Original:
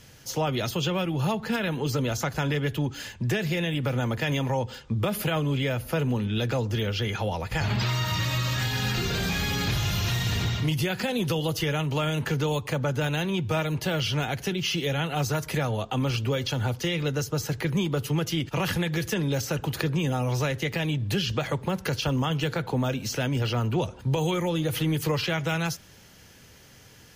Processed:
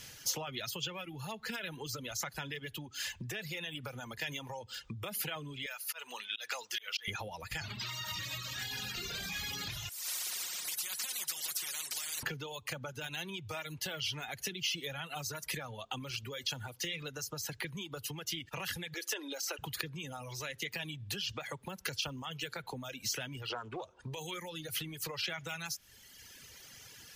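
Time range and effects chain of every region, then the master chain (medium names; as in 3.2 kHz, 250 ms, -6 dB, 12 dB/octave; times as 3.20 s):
5.66–7.08 s: high-pass 990 Hz + slow attack 174 ms
9.89–12.23 s: band-pass filter 5.8 kHz, Q 3.8 + comb 5.5 ms, depth 75% + spectrum-flattening compressor 10:1
18.94–19.59 s: elliptic high-pass 280 Hz + treble shelf 9.2 kHz -3.5 dB
23.49–24.14 s: low-pass 9.1 kHz 24 dB/octave + high-order bell 700 Hz +8.5 dB 2.5 oct + loudspeaker Doppler distortion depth 0.27 ms
whole clip: compression, threshold -35 dBFS; reverb removal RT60 1.8 s; tilt shelf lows -6 dB, about 1.2 kHz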